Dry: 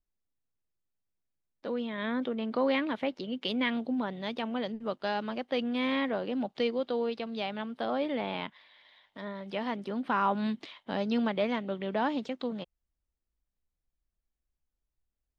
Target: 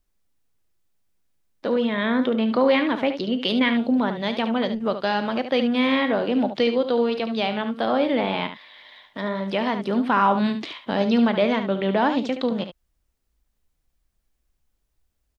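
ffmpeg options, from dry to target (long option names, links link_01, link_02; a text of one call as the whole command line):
ffmpeg -i in.wav -filter_complex "[0:a]asplit=2[link_01][link_02];[link_02]alimiter=level_in=2.5dB:limit=-24dB:level=0:latency=1:release=350,volume=-2.5dB,volume=2dB[link_03];[link_01][link_03]amix=inputs=2:normalize=0,aecho=1:1:35|72:0.15|0.335,volume=5dB" out.wav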